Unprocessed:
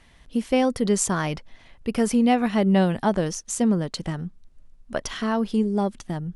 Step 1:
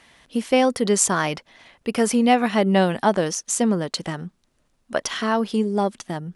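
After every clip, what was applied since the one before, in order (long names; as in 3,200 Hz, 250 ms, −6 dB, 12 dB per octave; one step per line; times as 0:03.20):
high-pass filter 360 Hz 6 dB per octave
level +5.5 dB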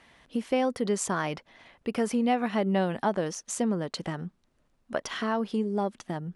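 high-shelf EQ 3,500 Hz −8.5 dB
downward compressor 1.5 to 1, threshold −29 dBFS, peak gain reduction 6 dB
level −2.5 dB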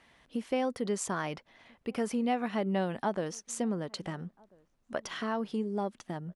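slap from a distant wall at 230 metres, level −28 dB
level −4.5 dB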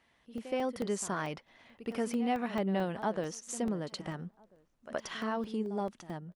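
automatic gain control gain up to 6.5 dB
echo ahead of the sound 72 ms −13.5 dB
regular buffer underruns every 0.22 s, samples 64, zero, from 0:00.38
level −8 dB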